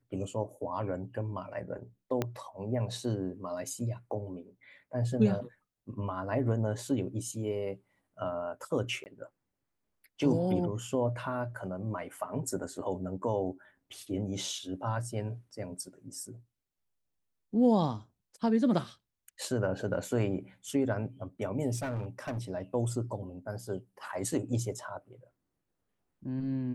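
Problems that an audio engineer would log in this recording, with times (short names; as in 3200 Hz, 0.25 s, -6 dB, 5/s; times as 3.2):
2.22 pop -16 dBFS
9.04–9.06 gap 19 ms
21.76–22.39 clipped -31 dBFS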